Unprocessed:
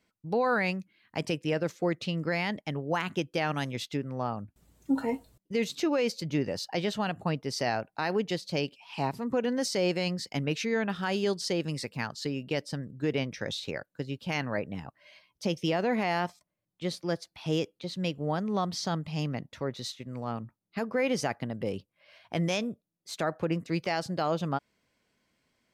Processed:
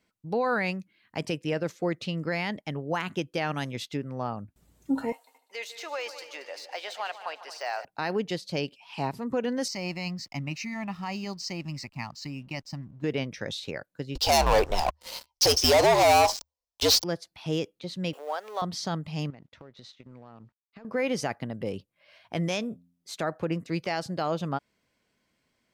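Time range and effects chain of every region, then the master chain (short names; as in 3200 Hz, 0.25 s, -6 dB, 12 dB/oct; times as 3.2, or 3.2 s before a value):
5.12–7.85 de-esser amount 100% + HPF 640 Hz 24 dB/oct + multi-head echo 75 ms, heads second and third, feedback 47%, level -14 dB
9.68–13.04 fixed phaser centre 2300 Hz, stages 8 + backlash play -53 dBFS
14.15–17.04 EQ curve 120 Hz 0 dB, 200 Hz -27 dB, 780 Hz +7 dB, 1100 Hz +8 dB, 1700 Hz -16 dB, 5400 Hz +14 dB, 11000 Hz -3 dB + sample leveller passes 5 + frequency shift -76 Hz
18.13–18.62 G.711 law mismatch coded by mu + inverse Chebyshev high-pass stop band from 150 Hz, stop band 60 dB + upward compressor, threshold -37 dBFS
19.3–20.85 G.711 law mismatch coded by A + LPF 4300 Hz + compressor 16:1, threshold -43 dBFS
22.69–23.13 doubler 23 ms -7 dB + de-hum 86.8 Hz, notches 3
whole clip: dry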